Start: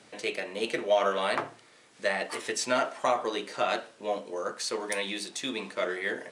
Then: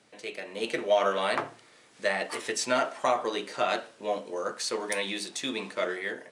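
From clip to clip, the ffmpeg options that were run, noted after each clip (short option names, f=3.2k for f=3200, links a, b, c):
-af "dynaudnorm=f=150:g=7:m=8dB,volume=-7dB"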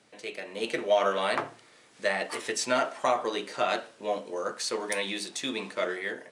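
-af anull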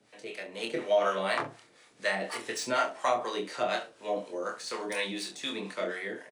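-filter_complex "[0:a]acrossover=split=640[a][b];[a]aeval=exprs='val(0)*(1-0.7/2+0.7/2*cos(2*PI*4.1*n/s))':c=same[c];[b]aeval=exprs='val(0)*(1-0.7/2-0.7/2*cos(2*PI*4.1*n/s))':c=same[d];[c][d]amix=inputs=2:normalize=0,aecho=1:1:26|68:0.531|0.178,acrossover=split=250|900|5200[e][f][g][h];[h]asoftclip=type=tanh:threshold=-38.5dB[i];[e][f][g][i]amix=inputs=4:normalize=0"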